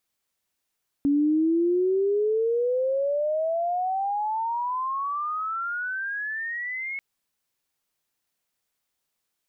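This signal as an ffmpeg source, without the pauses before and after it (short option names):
-f lavfi -i "aevalsrc='pow(10,(-18-11*t/5.94)/20)*sin(2*PI*280*5.94/log(2200/280)*(exp(log(2200/280)*t/5.94)-1))':d=5.94:s=44100"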